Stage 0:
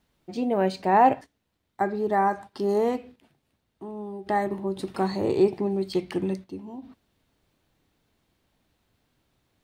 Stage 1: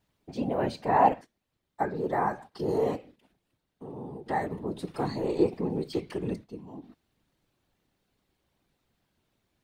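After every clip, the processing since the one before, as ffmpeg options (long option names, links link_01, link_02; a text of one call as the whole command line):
ffmpeg -i in.wav -af "afftfilt=real='hypot(re,im)*cos(2*PI*random(0))':imag='hypot(re,im)*sin(2*PI*random(1))':win_size=512:overlap=0.75,volume=1.5dB" out.wav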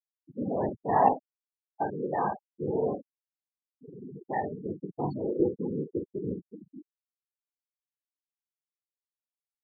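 ffmpeg -i in.wav -filter_complex "[0:a]asplit=2[link_01][link_02];[link_02]aecho=0:1:20|47|69:0.447|0.422|0.168[link_03];[link_01][link_03]amix=inputs=2:normalize=0,afftfilt=real='re*gte(hypot(re,im),0.0631)':imag='im*gte(hypot(re,im),0.0631)':win_size=1024:overlap=0.75,volume=-2.5dB" out.wav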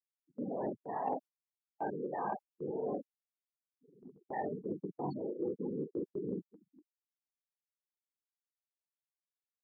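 ffmpeg -i in.wav -af "highpass=180,agate=range=-18dB:threshold=-41dB:ratio=16:detection=peak,areverse,acompressor=threshold=-36dB:ratio=6,areverse,volume=1.5dB" out.wav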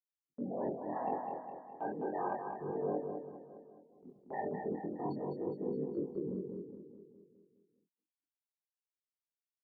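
ffmpeg -i in.wav -filter_complex "[0:a]agate=range=-33dB:threshold=-56dB:ratio=3:detection=peak,asplit=2[link_01][link_02];[link_02]aecho=0:1:207|414|621|828|1035|1242|1449:0.531|0.281|0.149|0.079|0.0419|0.0222|0.0118[link_03];[link_01][link_03]amix=inputs=2:normalize=0,flanger=delay=20:depth=5:speed=0.34,volume=2dB" out.wav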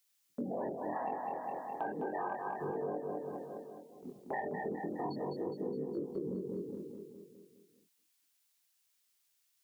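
ffmpeg -i in.wav -af "tiltshelf=frequency=1500:gain=-7.5,acompressor=threshold=-49dB:ratio=6,volume=14dB" out.wav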